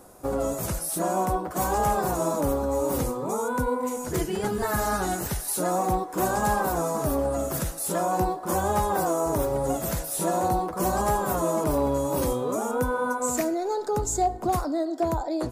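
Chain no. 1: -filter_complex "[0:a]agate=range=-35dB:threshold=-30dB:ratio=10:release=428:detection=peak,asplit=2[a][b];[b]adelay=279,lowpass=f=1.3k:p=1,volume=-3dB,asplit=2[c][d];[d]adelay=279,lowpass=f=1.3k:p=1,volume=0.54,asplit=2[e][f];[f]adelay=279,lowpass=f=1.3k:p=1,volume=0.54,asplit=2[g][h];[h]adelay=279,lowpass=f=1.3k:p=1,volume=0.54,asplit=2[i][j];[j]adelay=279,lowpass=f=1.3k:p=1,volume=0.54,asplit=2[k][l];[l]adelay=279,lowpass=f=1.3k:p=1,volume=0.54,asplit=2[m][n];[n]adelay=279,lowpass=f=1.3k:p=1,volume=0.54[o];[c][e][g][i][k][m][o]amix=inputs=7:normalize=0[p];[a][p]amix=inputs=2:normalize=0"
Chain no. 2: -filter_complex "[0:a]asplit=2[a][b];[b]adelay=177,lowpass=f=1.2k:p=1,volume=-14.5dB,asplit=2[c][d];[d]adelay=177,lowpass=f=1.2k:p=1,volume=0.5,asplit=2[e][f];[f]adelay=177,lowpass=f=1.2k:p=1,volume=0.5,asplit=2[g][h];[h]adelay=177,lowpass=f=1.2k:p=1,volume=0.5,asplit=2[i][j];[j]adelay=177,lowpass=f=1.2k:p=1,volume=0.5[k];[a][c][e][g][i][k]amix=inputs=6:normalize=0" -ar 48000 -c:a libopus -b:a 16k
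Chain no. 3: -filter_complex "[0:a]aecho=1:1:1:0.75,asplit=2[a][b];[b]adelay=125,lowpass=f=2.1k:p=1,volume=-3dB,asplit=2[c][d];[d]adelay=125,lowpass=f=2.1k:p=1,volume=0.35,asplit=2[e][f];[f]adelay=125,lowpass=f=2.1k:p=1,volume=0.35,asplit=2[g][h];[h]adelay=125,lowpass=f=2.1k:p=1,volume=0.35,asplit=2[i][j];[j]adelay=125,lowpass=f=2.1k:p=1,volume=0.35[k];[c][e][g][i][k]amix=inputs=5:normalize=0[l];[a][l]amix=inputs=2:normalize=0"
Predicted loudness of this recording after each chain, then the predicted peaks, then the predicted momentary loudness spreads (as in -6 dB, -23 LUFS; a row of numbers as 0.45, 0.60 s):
-24.5, -26.0, -23.5 LUFS; -10.5, -11.0, -8.0 dBFS; 3, 4, 5 LU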